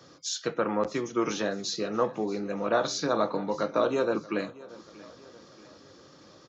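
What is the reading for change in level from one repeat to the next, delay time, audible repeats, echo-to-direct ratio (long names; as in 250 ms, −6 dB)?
−6.0 dB, 632 ms, 3, −19.0 dB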